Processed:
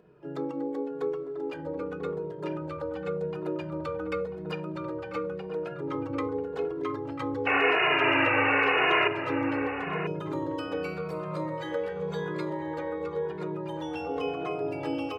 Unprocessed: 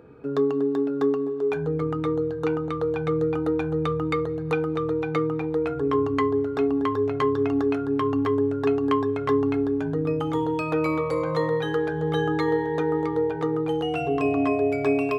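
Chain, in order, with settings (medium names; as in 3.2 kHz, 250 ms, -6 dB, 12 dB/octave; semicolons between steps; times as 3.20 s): harmony voices +3 st -4 dB, +12 st -14 dB; hum notches 60/120 Hz; painted sound noise, 7.46–9.08 s, 320–2900 Hz -14 dBFS; echo from a far wall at 170 m, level -7 dB; endless flanger 2.4 ms -0.9 Hz; trim -7.5 dB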